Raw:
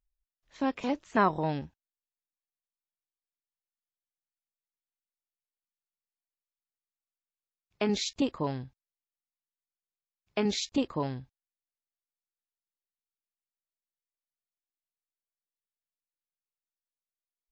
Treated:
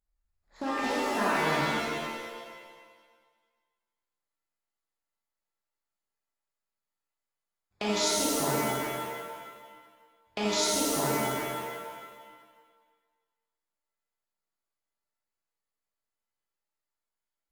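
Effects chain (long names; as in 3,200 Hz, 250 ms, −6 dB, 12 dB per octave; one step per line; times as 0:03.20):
adaptive Wiener filter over 15 samples
bass and treble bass −4 dB, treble +12 dB
downward compressor, threshold −33 dBFS, peak gain reduction 13 dB
reverb with rising layers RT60 1.5 s, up +7 semitones, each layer −2 dB, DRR −7.5 dB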